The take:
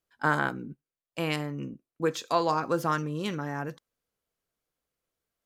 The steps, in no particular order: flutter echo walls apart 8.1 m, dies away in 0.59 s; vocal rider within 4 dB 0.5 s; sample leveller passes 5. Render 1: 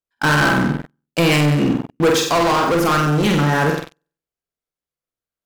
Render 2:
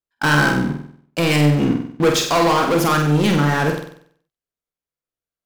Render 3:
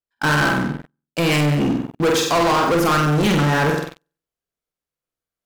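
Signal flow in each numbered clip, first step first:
flutter echo > sample leveller > vocal rider; sample leveller > vocal rider > flutter echo; vocal rider > flutter echo > sample leveller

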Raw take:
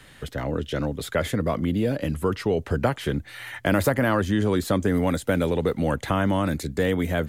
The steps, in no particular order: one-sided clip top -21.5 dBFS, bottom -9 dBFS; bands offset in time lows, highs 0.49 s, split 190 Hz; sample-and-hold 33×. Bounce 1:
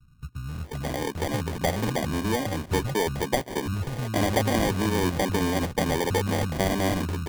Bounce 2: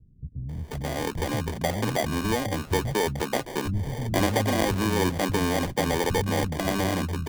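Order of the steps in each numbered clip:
one-sided clip > bands offset in time > sample-and-hold; one-sided clip > sample-and-hold > bands offset in time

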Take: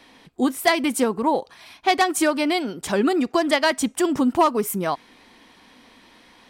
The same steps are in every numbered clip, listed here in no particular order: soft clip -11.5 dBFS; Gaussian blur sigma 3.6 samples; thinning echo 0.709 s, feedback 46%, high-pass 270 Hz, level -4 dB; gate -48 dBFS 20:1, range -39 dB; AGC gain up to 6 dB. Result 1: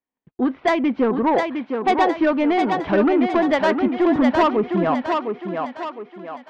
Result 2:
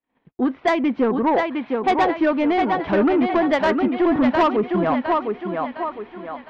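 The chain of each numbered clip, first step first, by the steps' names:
Gaussian blur > gate > AGC > soft clip > thinning echo; AGC > thinning echo > gate > Gaussian blur > soft clip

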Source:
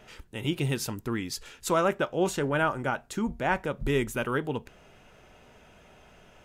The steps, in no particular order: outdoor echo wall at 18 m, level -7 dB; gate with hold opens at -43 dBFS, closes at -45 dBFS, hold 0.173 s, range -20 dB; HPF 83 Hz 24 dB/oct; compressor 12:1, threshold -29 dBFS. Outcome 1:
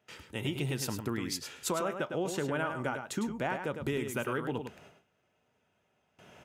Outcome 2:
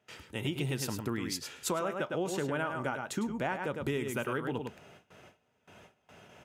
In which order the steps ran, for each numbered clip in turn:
gate with hold > HPF > compressor > outdoor echo; outdoor echo > gate with hold > HPF > compressor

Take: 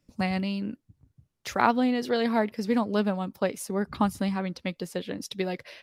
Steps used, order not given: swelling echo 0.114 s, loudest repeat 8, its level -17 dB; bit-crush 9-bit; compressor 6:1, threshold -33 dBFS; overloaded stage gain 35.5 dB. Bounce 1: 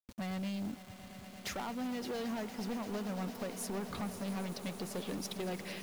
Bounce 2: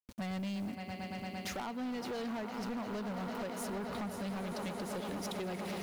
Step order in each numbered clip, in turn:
compressor > overloaded stage > swelling echo > bit-crush; bit-crush > swelling echo > compressor > overloaded stage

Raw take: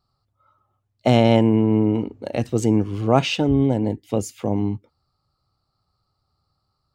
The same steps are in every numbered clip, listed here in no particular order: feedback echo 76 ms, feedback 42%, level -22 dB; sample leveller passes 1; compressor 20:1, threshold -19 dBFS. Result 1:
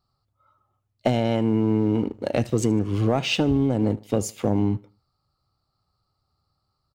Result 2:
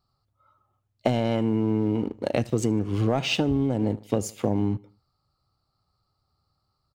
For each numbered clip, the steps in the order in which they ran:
compressor > feedback echo > sample leveller; feedback echo > sample leveller > compressor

